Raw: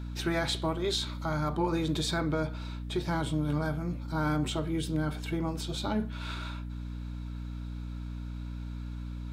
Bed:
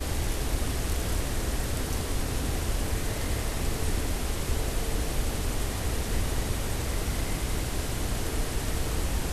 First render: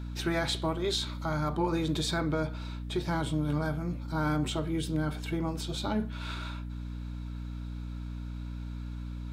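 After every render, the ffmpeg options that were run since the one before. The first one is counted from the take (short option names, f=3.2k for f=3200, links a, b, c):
-af anull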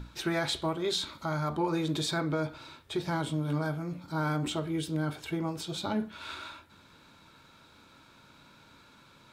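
-af "bandreject=f=60:t=h:w=6,bandreject=f=120:t=h:w=6,bandreject=f=180:t=h:w=6,bandreject=f=240:t=h:w=6,bandreject=f=300:t=h:w=6"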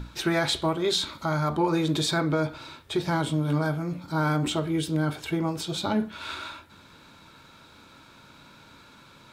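-af "volume=5.5dB"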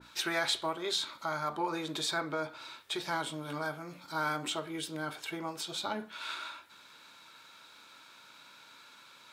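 -af "highpass=f=1.4k:p=1,adynamicequalizer=threshold=0.00501:dfrequency=1800:dqfactor=0.7:tfrequency=1800:tqfactor=0.7:attack=5:release=100:ratio=0.375:range=3.5:mode=cutabove:tftype=highshelf"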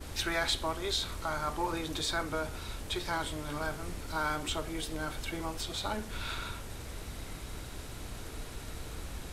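-filter_complex "[1:a]volume=-13dB[a];[0:a][a]amix=inputs=2:normalize=0"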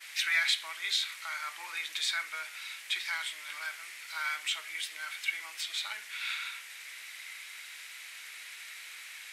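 -af "highpass=f=2.1k:t=q:w=3.6"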